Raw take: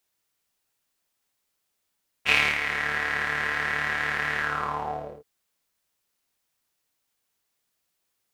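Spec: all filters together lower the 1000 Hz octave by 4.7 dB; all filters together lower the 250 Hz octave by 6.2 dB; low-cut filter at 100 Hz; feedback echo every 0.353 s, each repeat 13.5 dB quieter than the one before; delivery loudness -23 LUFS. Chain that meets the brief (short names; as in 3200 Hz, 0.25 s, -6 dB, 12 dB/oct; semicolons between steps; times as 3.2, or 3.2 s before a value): HPF 100 Hz; bell 250 Hz -8.5 dB; bell 1000 Hz -6 dB; feedback echo 0.353 s, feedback 21%, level -13.5 dB; gain +3.5 dB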